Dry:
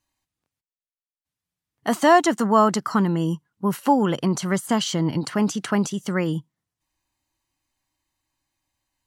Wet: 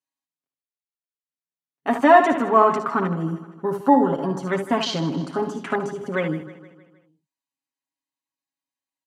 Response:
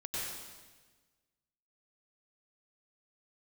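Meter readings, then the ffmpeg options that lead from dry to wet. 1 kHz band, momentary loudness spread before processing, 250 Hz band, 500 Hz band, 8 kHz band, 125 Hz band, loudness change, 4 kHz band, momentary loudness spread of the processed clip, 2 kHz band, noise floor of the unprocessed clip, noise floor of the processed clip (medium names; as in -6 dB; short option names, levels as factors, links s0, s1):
+2.5 dB, 10 LU, -1.5 dB, +2.5 dB, -11.5 dB, -3.5 dB, +1.0 dB, -2.0 dB, 13 LU, +2.0 dB, under -85 dBFS, under -85 dBFS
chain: -filter_complex "[0:a]highpass=f=180:w=0.5412,highpass=f=180:w=1.3066,aecho=1:1:7.3:0.81,asplit=2[s0][s1];[s1]aecho=0:1:58|73:0.282|0.355[s2];[s0][s2]amix=inputs=2:normalize=0,afwtdn=0.0355,asplit=2[s3][s4];[s4]aecho=0:1:156|312|468|624|780:0.168|0.089|0.0472|0.025|0.0132[s5];[s3][s5]amix=inputs=2:normalize=0,aresample=32000,aresample=44100,volume=0.891"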